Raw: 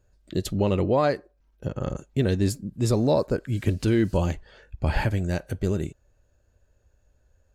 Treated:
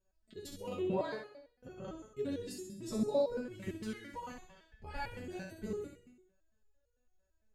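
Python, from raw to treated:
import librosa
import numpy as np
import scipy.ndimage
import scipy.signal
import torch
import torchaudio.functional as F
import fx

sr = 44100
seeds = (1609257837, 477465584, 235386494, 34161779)

y = fx.low_shelf_res(x, sr, hz=730.0, db=-7.0, q=1.5, at=(3.72, 4.32))
y = fx.echo_feedback(y, sr, ms=65, feedback_pct=54, wet_db=-4.5)
y = fx.resonator_held(y, sr, hz=8.9, low_hz=190.0, high_hz=480.0)
y = y * 10.0 ** (-1.0 / 20.0)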